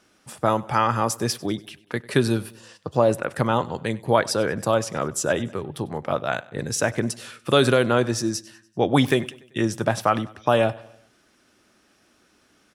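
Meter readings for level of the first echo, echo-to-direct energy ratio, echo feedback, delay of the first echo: -21.5 dB, -20.0 dB, 51%, 97 ms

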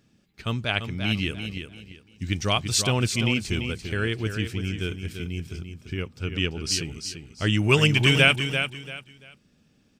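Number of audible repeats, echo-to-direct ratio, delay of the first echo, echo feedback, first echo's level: 3, -7.5 dB, 0.341 s, 26%, -8.0 dB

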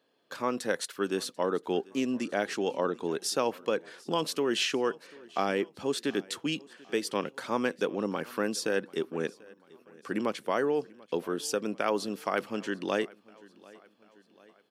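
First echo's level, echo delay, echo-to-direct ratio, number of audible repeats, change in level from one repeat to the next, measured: -23.5 dB, 0.74 s, -22.0 dB, 3, -5.5 dB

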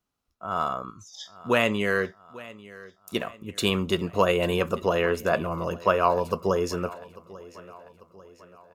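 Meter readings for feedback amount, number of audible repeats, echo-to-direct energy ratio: 50%, 3, -18.5 dB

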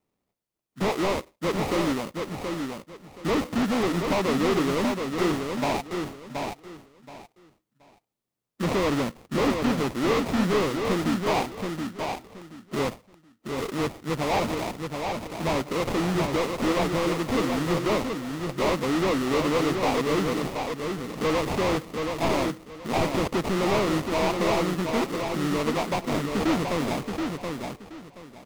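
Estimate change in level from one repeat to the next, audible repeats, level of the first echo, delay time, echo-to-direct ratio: -13.0 dB, 3, -5.0 dB, 0.726 s, -5.0 dB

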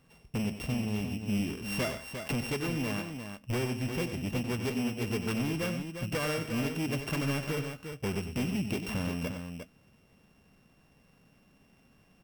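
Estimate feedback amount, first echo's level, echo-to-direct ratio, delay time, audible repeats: no steady repeat, -10.5 dB, -5.0 dB, 94 ms, 2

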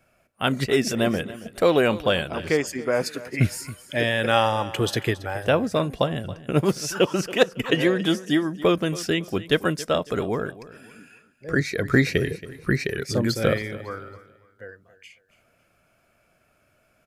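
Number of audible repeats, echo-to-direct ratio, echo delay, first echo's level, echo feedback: 2, -16.5 dB, 0.276 s, -17.0 dB, 32%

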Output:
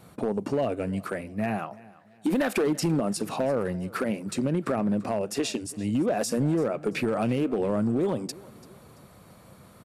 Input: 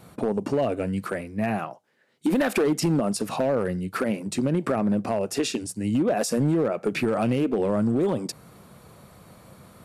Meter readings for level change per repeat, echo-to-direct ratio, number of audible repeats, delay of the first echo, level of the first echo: -8.0 dB, -20.5 dB, 2, 0.338 s, -21.0 dB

